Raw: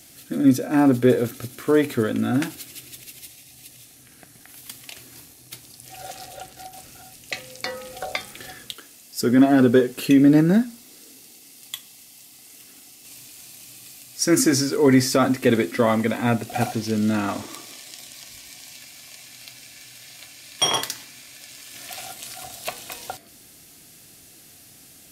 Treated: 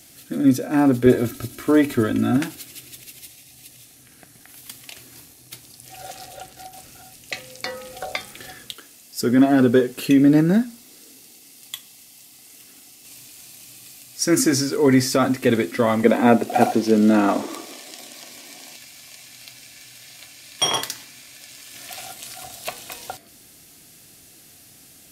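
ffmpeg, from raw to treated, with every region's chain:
-filter_complex "[0:a]asettb=1/sr,asplit=3[s0][s1][s2];[s0]atrim=end=1.064[s3];[s1]atrim=start=1.06:end=2.37,asetpts=PTS-STARTPTS,afade=t=in:d=0.004:c=qsin,afade=t=out:st=1.306:d=0.004:c=qsin,lowshelf=f=110:g=11,aecho=1:1:3.1:0.62,atrim=end_sample=57771[s4];[s2]atrim=start=2.366[s5];[s3][s4]acrossfade=d=0.004:c1=hsin:c2=qsin[s6];[s6][s5]acrossfade=d=0.004:c1=qsin:c2=hsin,asettb=1/sr,asplit=3[s7][s8][s9];[s7]atrim=end=16.034[s10];[s8]atrim=start=16.03:end=18.76,asetpts=PTS-STARTPTS,afade=t=in:d=0.004:c=qsin,afade=t=out:st=2.726:d=0.004:c=qsin,highpass=200,equalizer=f=410:t=o:w=3:g=10.5[s11];[s9]atrim=start=18.756[s12];[s10][s11]acrossfade=d=0.004:c1=hsin:c2=qsin[s13];[s13][s12]acrossfade=d=0.004:c1=qsin:c2=hsin"

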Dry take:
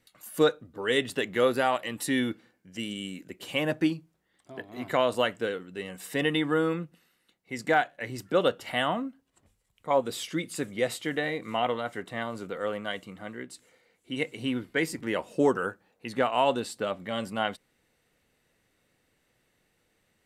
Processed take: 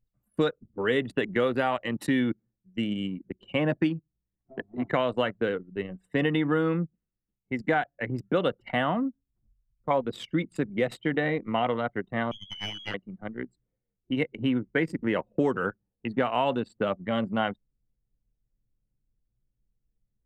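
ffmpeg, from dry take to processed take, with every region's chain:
-filter_complex "[0:a]asettb=1/sr,asplit=3[s0][s1][s2];[s0]atrim=end=12.314[s3];[s1]atrim=start=12.31:end=12.94,asetpts=PTS-STARTPTS,afade=t=in:d=0.004:c=qsin,afade=t=out:st=0.626:d=0.004:c=qsin,lowpass=f=3000:t=q:w=0.5098,lowpass=f=3000:t=q:w=0.6013,lowpass=f=3000:t=q:w=0.9,lowpass=f=3000:t=q:w=2.563,afreqshift=-3500,aeval=exprs='clip(val(0),-1,0.01)':c=same[s4];[s2]atrim=start=12.936[s5];[s3][s4]acrossfade=d=0.004:c1=hsin:c2=qsin[s6];[s6][s5]acrossfade=d=0.004:c1=qsin:c2=hsin,anlmdn=3.98,bass=f=250:g=7,treble=f=4000:g=-15,acrossover=split=120|2100[s7][s8][s9];[s7]acompressor=threshold=0.00224:ratio=4[s10];[s8]acompressor=threshold=0.0447:ratio=4[s11];[s9]acompressor=threshold=0.01:ratio=4[s12];[s10][s11][s12]amix=inputs=3:normalize=0,volume=1.68"

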